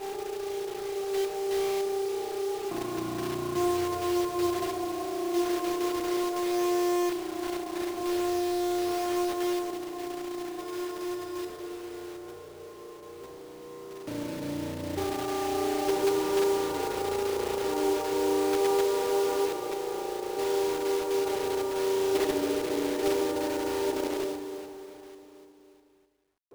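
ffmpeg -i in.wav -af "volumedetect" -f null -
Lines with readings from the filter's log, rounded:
mean_volume: -29.9 dB
max_volume: -17.3 dB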